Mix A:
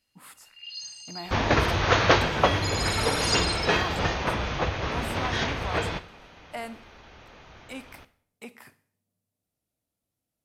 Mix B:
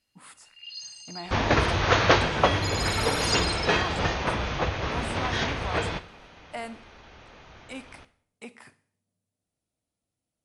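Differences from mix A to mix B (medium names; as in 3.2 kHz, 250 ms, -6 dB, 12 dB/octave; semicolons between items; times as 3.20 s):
speech: add brick-wall FIR low-pass 11 kHz; first sound: send -11.0 dB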